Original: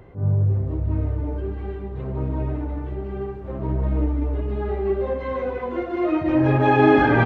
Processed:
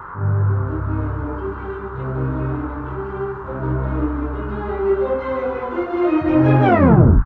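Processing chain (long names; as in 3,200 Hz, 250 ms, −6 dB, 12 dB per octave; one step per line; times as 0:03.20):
turntable brake at the end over 0.63 s
noise in a band 850–1,500 Hz −39 dBFS
double-tracking delay 23 ms −6.5 dB
level +2.5 dB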